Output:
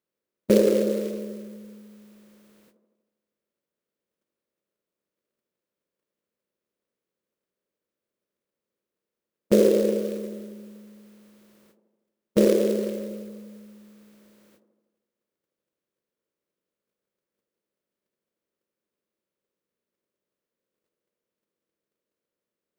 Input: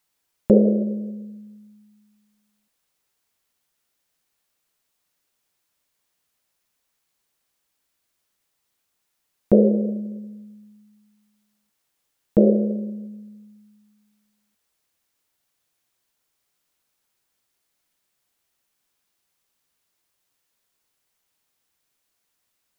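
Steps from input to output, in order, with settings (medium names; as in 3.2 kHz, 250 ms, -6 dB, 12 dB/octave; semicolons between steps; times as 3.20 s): spectral levelling over time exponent 0.6; gate -53 dBFS, range -28 dB; tilt EQ +3.5 dB/octave; short-mantissa float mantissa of 2-bit; peaking EQ 740 Hz -10 dB 0.55 oct; feedback echo behind a band-pass 80 ms, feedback 62%, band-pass 430 Hz, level -5.5 dB; tape noise reduction on one side only decoder only; trim +2 dB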